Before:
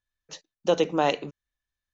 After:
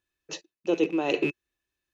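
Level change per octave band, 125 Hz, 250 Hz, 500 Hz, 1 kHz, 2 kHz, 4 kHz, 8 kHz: -4.0 dB, +3.5 dB, -2.5 dB, -8.5 dB, +1.5 dB, -3.5 dB, n/a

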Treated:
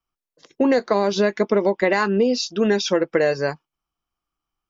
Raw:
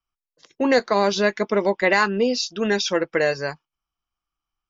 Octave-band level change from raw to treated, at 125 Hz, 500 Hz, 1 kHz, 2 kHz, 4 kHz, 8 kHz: +3.0 dB, +2.0 dB, -1.5 dB, -3.0 dB, -1.5 dB, n/a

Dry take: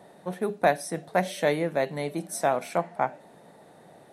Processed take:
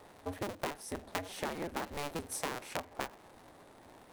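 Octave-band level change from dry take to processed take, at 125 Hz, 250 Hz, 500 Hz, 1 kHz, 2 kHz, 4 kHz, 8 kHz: -11.5, -10.5, -15.0, -12.5, -10.0, -4.0, -5.5 dB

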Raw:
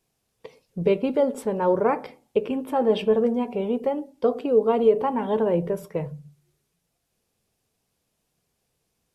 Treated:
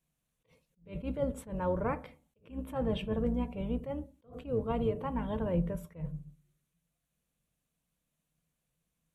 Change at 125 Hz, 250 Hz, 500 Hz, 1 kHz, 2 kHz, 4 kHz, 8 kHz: -1.5 dB, -8.5 dB, -14.5 dB, -12.5 dB, -9.5 dB, -10.0 dB, n/a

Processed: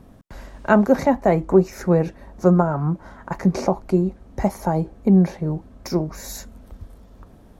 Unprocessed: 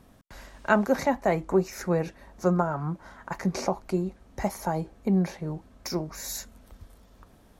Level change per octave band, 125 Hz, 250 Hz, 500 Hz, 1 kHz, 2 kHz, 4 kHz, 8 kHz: +9.0, +9.0, +7.5, +5.0, +2.0, 0.0, -0.5 dB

